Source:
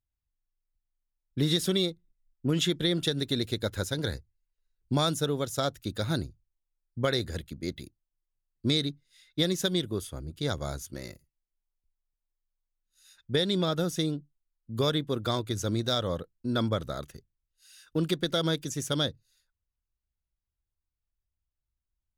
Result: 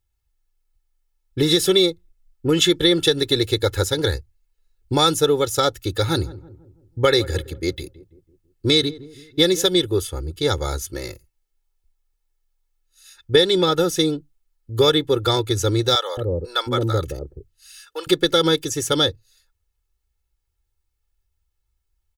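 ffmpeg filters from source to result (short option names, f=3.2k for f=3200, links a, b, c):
-filter_complex "[0:a]asplit=3[a][b][c];[a]afade=t=out:st=6.09:d=0.02[d];[b]asplit=2[e][f];[f]adelay=164,lowpass=f=830:p=1,volume=-16.5dB,asplit=2[g][h];[h]adelay=164,lowpass=f=830:p=1,volume=0.52,asplit=2[i][j];[j]adelay=164,lowpass=f=830:p=1,volume=0.52,asplit=2[k][l];[l]adelay=164,lowpass=f=830:p=1,volume=0.52,asplit=2[m][n];[n]adelay=164,lowpass=f=830:p=1,volume=0.52[o];[e][g][i][k][m][o]amix=inputs=6:normalize=0,afade=t=in:st=6.09:d=0.02,afade=t=out:st=9.68:d=0.02[p];[c]afade=t=in:st=9.68:d=0.02[q];[d][p][q]amix=inputs=3:normalize=0,asettb=1/sr,asplit=3[r][s][t];[r]atrim=end=15.954[u];[s]atrim=start=15.95:end=18.07,asetpts=PTS-STARTPTS,afade=t=in:d=0.004:c=qsin,afade=t=out:st=2.116:d=0.004:c=qsin,acrossover=split=580[v][w];[v]adelay=220[x];[x][w]amix=inputs=2:normalize=0,atrim=end_sample=93492[y];[t]atrim=start=18.066[z];[u][y]acrossfade=d=0.004:c1=hsin:c2=qsin[aa];[aa][z]acrossfade=d=0.004:c1=qsin:c2=hsin,equalizer=f=140:w=4.9:g=-6.5,aecho=1:1:2.3:0.85,volume=8.5dB"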